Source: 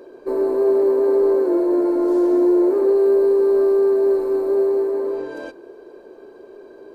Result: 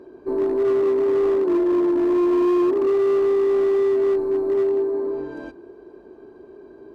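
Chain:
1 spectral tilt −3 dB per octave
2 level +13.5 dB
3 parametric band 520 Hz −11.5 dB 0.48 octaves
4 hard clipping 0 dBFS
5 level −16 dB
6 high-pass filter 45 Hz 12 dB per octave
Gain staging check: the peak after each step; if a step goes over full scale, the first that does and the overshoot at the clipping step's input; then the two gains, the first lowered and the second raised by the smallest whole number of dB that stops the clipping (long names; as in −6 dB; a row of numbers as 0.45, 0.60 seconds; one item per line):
−4.5, +9.0, +6.5, 0.0, −16.0, −14.0 dBFS
step 2, 6.5 dB
step 2 +6.5 dB, step 5 −9 dB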